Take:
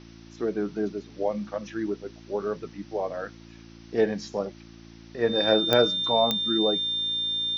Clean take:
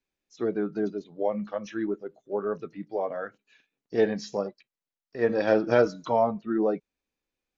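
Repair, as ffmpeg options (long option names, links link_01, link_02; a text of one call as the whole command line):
ffmpeg -i in.wav -af "adeclick=threshold=4,bandreject=frequency=56.5:width_type=h:width=4,bandreject=frequency=113:width_type=h:width=4,bandreject=frequency=169.5:width_type=h:width=4,bandreject=frequency=226:width_type=h:width=4,bandreject=frequency=282.5:width_type=h:width=4,bandreject=frequency=339:width_type=h:width=4,bandreject=frequency=3600:width=30,afwtdn=0.0025" out.wav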